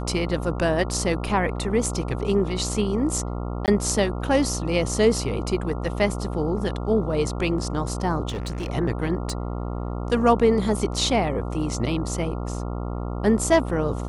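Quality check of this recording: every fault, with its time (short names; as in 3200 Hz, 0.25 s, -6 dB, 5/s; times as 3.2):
buzz 60 Hz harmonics 23 -29 dBFS
3.66–3.68 gap 18 ms
8.28–8.7 clipped -25 dBFS
9.3 pop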